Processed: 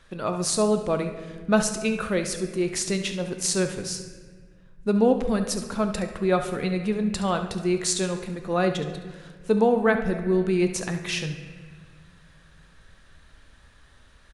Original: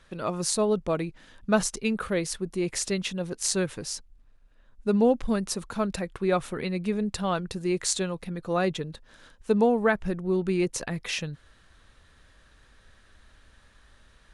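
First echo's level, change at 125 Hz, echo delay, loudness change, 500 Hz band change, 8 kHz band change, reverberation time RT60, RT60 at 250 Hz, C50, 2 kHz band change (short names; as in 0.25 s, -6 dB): -12.0 dB, +3.0 dB, 70 ms, +2.5 dB, +2.5 dB, +2.0 dB, 1.6 s, 2.6 s, 7.5 dB, +2.5 dB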